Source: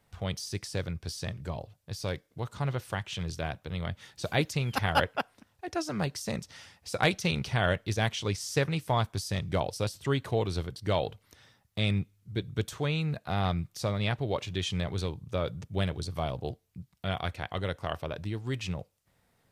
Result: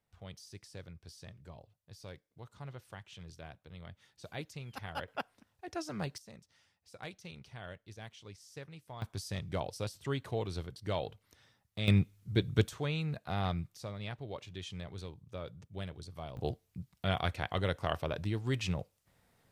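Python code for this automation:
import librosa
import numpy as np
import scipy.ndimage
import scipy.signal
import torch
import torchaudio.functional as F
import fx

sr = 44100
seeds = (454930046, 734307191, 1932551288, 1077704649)

y = fx.gain(x, sr, db=fx.steps((0.0, -15.0), (5.08, -7.0), (6.18, -20.0), (9.02, -7.0), (11.88, 3.0), (12.68, -5.0), (13.76, -12.0), (16.37, 0.0)))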